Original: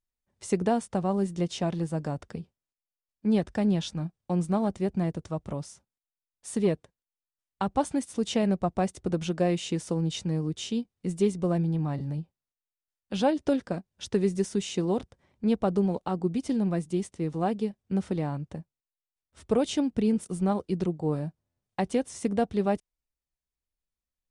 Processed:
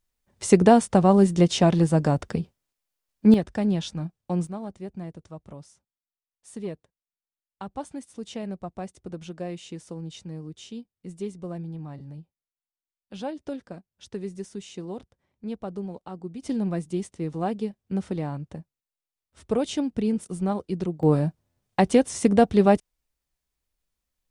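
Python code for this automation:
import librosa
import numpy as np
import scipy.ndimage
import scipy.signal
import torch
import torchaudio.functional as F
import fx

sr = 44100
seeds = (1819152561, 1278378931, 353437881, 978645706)

y = fx.gain(x, sr, db=fx.steps((0.0, 10.0), (3.34, 1.0), (4.47, -8.5), (16.42, 0.0), (21.03, 8.5)))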